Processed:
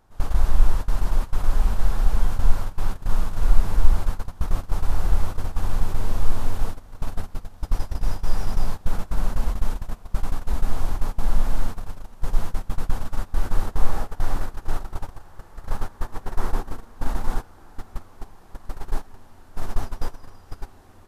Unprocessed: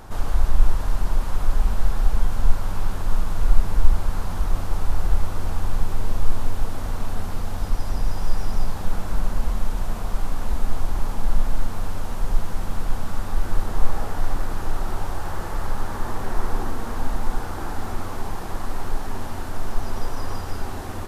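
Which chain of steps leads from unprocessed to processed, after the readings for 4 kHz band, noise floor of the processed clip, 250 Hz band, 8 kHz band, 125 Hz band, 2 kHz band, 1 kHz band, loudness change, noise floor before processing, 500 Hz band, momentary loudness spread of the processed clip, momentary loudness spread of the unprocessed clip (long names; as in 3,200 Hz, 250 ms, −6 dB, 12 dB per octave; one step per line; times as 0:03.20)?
−3.0 dB, −47 dBFS, −3.0 dB, can't be measured, −1.0 dB, −3.5 dB, −3.5 dB, −0.5 dB, −29 dBFS, −3.0 dB, 16 LU, 7 LU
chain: noise gate −18 dBFS, range −19 dB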